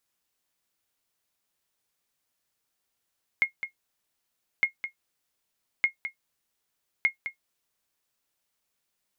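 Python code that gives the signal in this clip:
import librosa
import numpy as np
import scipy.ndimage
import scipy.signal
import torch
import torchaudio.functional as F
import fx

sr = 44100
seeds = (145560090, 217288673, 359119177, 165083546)

y = fx.sonar_ping(sr, hz=2150.0, decay_s=0.11, every_s=1.21, pings=4, echo_s=0.21, echo_db=-10.5, level_db=-13.0)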